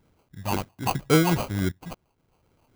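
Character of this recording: phasing stages 6, 3.7 Hz, lowest notch 420–1200 Hz; a quantiser's noise floor 12-bit, dither none; random-step tremolo, depth 75%; aliases and images of a low sample rate 1.8 kHz, jitter 0%

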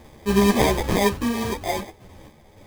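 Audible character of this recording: random-step tremolo; aliases and images of a low sample rate 1.4 kHz, jitter 0%; a shimmering, thickened sound

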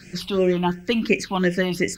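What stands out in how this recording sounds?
a quantiser's noise floor 12-bit, dither none; phasing stages 6, 2.8 Hz, lowest notch 470–1100 Hz

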